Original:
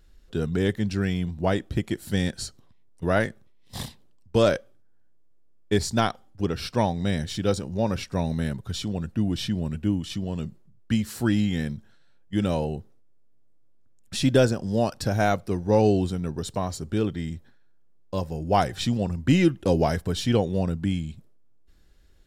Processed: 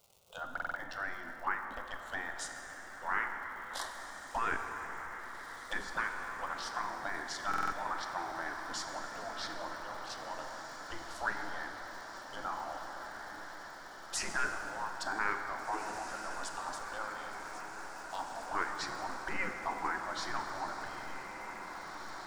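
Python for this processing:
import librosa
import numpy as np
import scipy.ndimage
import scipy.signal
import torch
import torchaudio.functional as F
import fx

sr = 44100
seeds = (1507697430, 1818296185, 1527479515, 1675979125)

p1 = fx.wiener(x, sr, points=9)
p2 = fx.env_lowpass_down(p1, sr, base_hz=1400.0, full_db=-20.0)
p3 = fx.spec_gate(p2, sr, threshold_db=-15, keep='weak')
p4 = fx.peak_eq(p3, sr, hz=90.0, db=-13.5, octaves=2.9)
p5 = fx.over_compress(p4, sr, threshold_db=-36.0, ratio=-1.0)
p6 = p4 + (p5 * 10.0 ** (-1.0 / 20.0))
p7 = fx.dmg_crackle(p6, sr, seeds[0], per_s=220.0, level_db=-48.0)
p8 = fx.env_phaser(p7, sr, low_hz=290.0, high_hz=1200.0, full_db=-23.0)
p9 = p8 + fx.echo_diffused(p8, sr, ms=1953, feedback_pct=70, wet_db=-8.5, dry=0)
p10 = fx.rev_plate(p9, sr, seeds[1], rt60_s=4.1, hf_ratio=0.55, predelay_ms=0, drr_db=4.0)
y = fx.buffer_glitch(p10, sr, at_s=(0.53, 7.49), block=2048, repeats=4)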